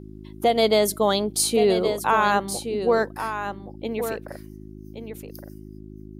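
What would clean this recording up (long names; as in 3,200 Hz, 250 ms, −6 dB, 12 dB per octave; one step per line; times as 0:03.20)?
hum removal 52.2 Hz, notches 7
echo removal 1,122 ms −9 dB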